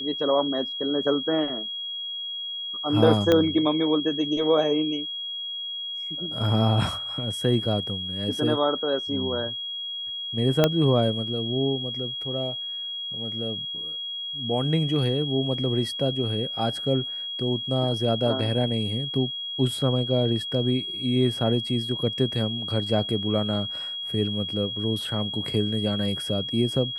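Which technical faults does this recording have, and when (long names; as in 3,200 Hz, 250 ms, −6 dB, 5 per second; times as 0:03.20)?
whistle 3,300 Hz −30 dBFS
0:03.32: click −8 dBFS
0:10.64: click −5 dBFS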